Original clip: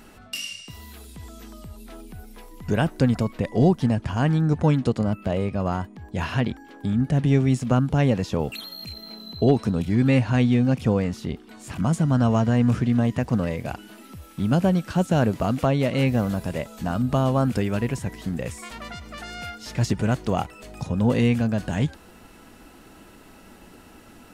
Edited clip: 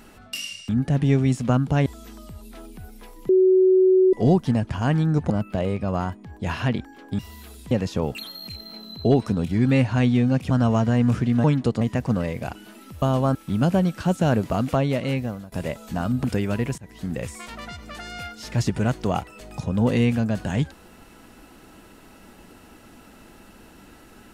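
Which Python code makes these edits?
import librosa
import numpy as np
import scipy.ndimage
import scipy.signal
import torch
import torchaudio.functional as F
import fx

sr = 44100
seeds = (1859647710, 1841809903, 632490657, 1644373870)

y = fx.edit(x, sr, fx.swap(start_s=0.69, length_s=0.52, other_s=6.91, other_length_s=1.17),
    fx.bleep(start_s=2.64, length_s=0.84, hz=374.0, db=-12.5),
    fx.move(start_s=4.65, length_s=0.37, to_s=13.04),
    fx.cut(start_s=10.87, length_s=1.23),
    fx.fade_out_to(start_s=15.51, length_s=0.91, curve='qsin', floor_db=-22.0),
    fx.move(start_s=17.14, length_s=0.33, to_s=14.25),
    fx.fade_in_from(start_s=18.01, length_s=0.34, floor_db=-23.5), tone=tone)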